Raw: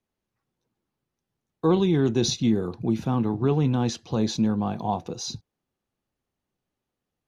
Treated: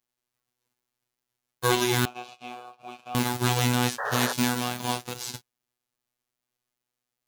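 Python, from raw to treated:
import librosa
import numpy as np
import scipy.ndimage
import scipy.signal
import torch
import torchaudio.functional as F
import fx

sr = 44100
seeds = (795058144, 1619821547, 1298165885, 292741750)

y = fx.envelope_flatten(x, sr, power=0.3)
y = fx.robotise(y, sr, hz=123.0)
y = fx.vowel_filter(y, sr, vowel='a', at=(2.05, 3.15))
y = fx.spec_paint(y, sr, seeds[0], shape='noise', start_s=3.98, length_s=0.35, low_hz=410.0, high_hz=1900.0, level_db=-30.0)
y = fx.mod_noise(y, sr, seeds[1], snr_db=35)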